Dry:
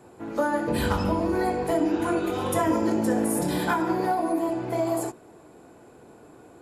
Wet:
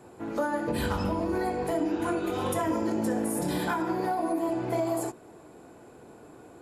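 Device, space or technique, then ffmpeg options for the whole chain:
clipper into limiter: -af "asoftclip=type=hard:threshold=-14.5dB,alimiter=limit=-19.5dB:level=0:latency=1:release=327"

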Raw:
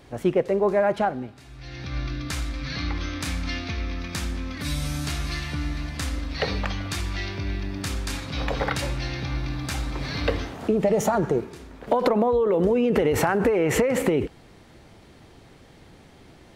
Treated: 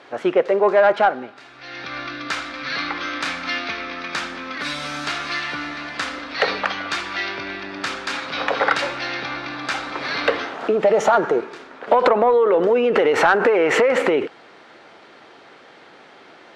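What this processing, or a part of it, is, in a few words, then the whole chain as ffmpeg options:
intercom: -af "highpass=450,lowpass=4100,equalizer=frequency=1400:width_type=o:width=0.5:gain=5.5,asoftclip=type=tanh:threshold=-13dB,volume=8.5dB"

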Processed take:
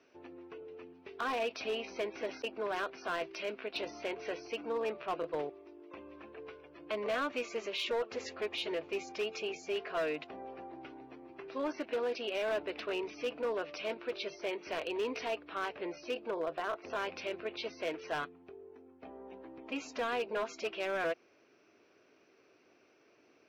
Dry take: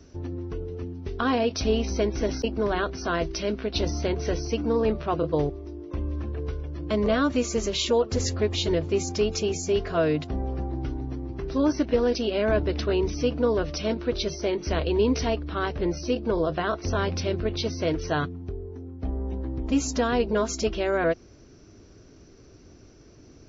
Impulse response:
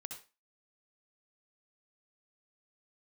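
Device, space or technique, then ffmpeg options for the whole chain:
megaphone: -filter_complex "[0:a]asettb=1/sr,asplit=3[link_01][link_02][link_03];[link_01]atrim=end=16.314[link_04];[link_02]atrim=start=16.31:end=16.9,asetpts=PTS-STARTPTS,afade=type=in:duration=0.004:curve=qsin,afade=type=out:start_time=0.586:duration=0.004:curve=qsin,highshelf=frequency=2500:gain=-8.5[link_05];[link_03]atrim=start=16.896[link_06];[link_04][link_05]acrossfade=duration=0.004:curve1=hsin:curve2=qsin[link_07];[link_07][link_06]acrossfade=duration=0.004:curve1=qsin:curve2=hsin,highpass=520,lowpass=3000,equalizer=frequency=2500:width_type=o:width=0.41:gain=8,asoftclip=type=hard:threshold=-23dB,volume=-6dB"

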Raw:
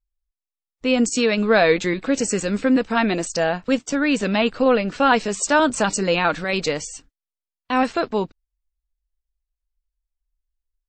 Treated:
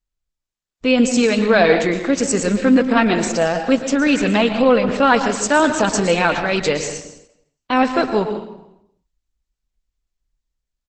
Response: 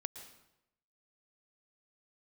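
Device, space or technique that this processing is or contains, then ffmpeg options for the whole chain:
speakerphone in a meeting room: -filter_complex "[1:a]atrim=start_sample=2205[link_01];[0:a][link_01]afir=irnorm=-1:irlink=0,asplit=2[link_02][link_03];[link_03]adelay=90,highpass=300,lowpass=3400,asoftclip=type=hard:threshold=-16dB,volume=-29dB[link_04];[link_02][link_04]amix=inputs=2:normalize=0,dynaudnorm=framelen=110:gausssize=9:maxgain=5.5dB,volume=1.5dB" -ar 48000 -c:a libopus -b:a 12k

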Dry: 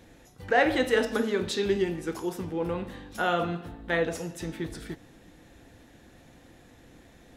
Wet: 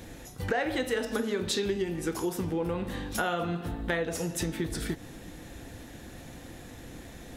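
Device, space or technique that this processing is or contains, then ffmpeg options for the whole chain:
ASMR close-microphone chain: -af "lowshelf=frequency=180:gain=3.5,acompressor=threshold=-35dB:ratio=5,highshelf=frequency=6400:gain=7,volume=7dB"

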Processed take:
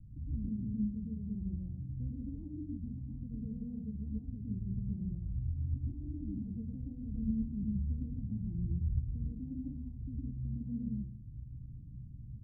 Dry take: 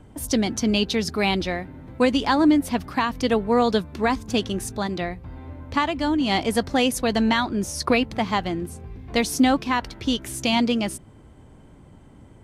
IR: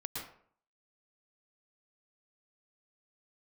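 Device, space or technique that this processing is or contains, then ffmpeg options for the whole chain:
club heard from the street: -filter_complex "[0:a]alimiter=limit=-20dB:level=0:latency=1:release=420,lowpass=frequency=170:width=0.5412,lowpass=frequency=170:width=1.3066[link_01];[1:a]atrim=start_sample=2205[link_02];[link_01][link_02]afir=irnorm=-1:irlink=0,asettb=1/sr,asplit=3[link_03][link_04][link_05];[link_03]atrim=end=7.044[link_06];[link_04]atrim=start=7.04:end=9,asetpts=PTS-STARTPTS,afade=type=in:duration=0.004:curve=qsin,afade=type=out:start_time=1.956:duration=0.004:curve=qsin,lowshelf=frequency=100:gain=6.5[link_07];[link_05]atrim=start=8.996[link_08];[link_06][link_07]acrossfade=duration=0.004:curve1=hsin:curve2=qsin[link_09];[link_09][link_08]acrossfade=duration=0.004:curve1=qsin:curve2=hsin,volume=1dB"

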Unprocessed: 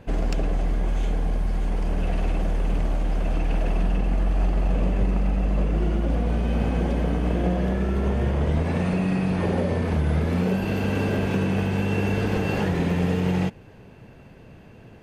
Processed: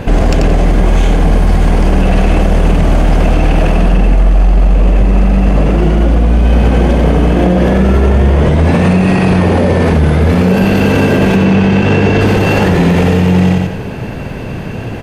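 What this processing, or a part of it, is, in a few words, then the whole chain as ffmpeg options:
loud club master: -filter_complex "[0:a]asettb=1/sr,asplit=3[link_01][link_02][link_03];[link_01]atrim=end=11.364[link_04];[link_02]atrim=start=11.36:end=12.21,asetpts=PTS-STARTPTS,afade=type=in:duration=0.004:curve=qsin,afade=type=out:start_time=0.846:duration=0.004:curve=qsin,lowpass=5800[link_05];[link_03]atrim=start=12.206[link_06];[link_04][link_05]acrossfade=duration=0.004:curve1=hsin:curve2=qsin[link_07];[link_07][link_06]acrossfade=duration=0.004:curve1=qsin:curve2=hsin,aecho=1:1:88|176|264|352:0.447|0.143|0.0457|0.0146,acompressor=threshold=-23dB:ratio=2,asoftclip=type=hard:threshold=-16dB,alimiter=level_in=25.5dB:limit=-1dB:release=50:level=0:latency=1,volume=-1dB"

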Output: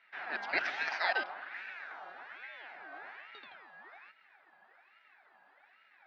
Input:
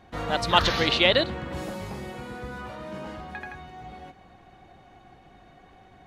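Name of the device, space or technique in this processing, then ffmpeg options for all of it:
voice changer toy: -af "aeval=exprs='val(0)*sin(2*PI*1500*n/s+1500*0.4/1.2*sin(2*PI*1.2*n/s))':channel_layout=same,highpass=460,equalizer=frequency=480:width_type=q:width=4:gain=-6,equalizer=frequency=750:width_type=q:width=4:gain=7,equalizer=frequency=1100:width_type=q:width=4:gain=-5,equalizer=frequency=1600:width_type=q:width=4:gain=5,equalizer=frequency=3100:width_type=q:width=4:gain=-6,lowpass=frequency=3800:width=0.5412,lowpass=frequency=3800:width=1.3066,volume=-9dB"

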